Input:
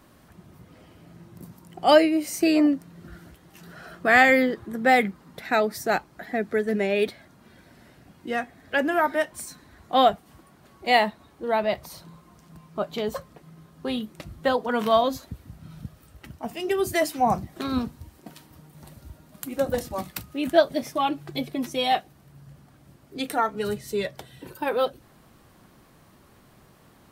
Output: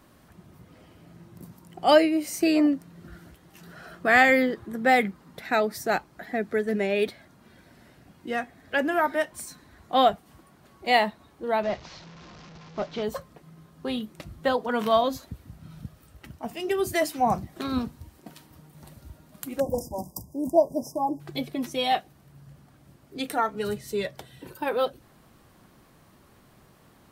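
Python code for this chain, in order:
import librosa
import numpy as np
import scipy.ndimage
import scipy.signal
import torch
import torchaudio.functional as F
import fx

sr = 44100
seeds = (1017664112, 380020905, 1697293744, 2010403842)

y = fx.delta_mod(x, sr, bps=32000, step_db=-39.5, at=(11.63, 13.03))
y = fx.brickwall_bandstop(y, sr, low_hz=1100.0, high_hz=4800.0, at=(19.6, 21.2))
y = y * librosa.db_to_amplitude(-1.5)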